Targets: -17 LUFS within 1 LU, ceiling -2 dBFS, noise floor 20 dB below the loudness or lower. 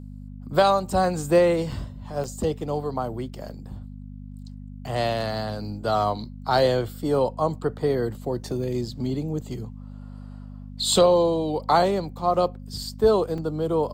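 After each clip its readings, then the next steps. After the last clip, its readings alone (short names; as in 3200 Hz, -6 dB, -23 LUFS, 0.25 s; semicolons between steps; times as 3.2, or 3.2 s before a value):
dropouts 3; longest dropout 3.8 ms; hum 50 Hz; harmonics up to 250 Hz; hum level -37 dBFS; loudness -24.0 LUFS; peak -7.5 dBFS; loudness target -17.0 LUFS
-> interpolate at 1.72/2.24/13.38, 3.8 ms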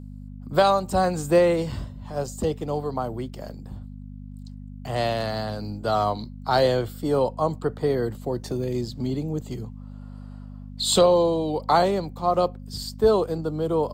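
dropouts 0; hum 50 Hz; harmonics up to 250 Hz; hum level -37 dBFS
-> de-hum 50 Hz, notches 5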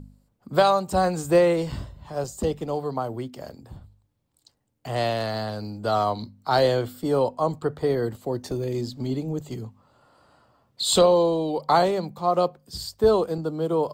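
hum none; loudness -24.5 LUFS; peak -7.5 dBFS; loudness target -17.0 LUFS
-> gain +7.5 dB; limiter -2 dBFS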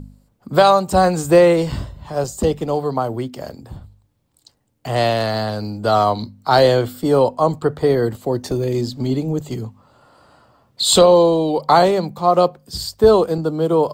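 loudness -17.0 LUFS; peak -2.0 dBFS; noise floor -63 dBFS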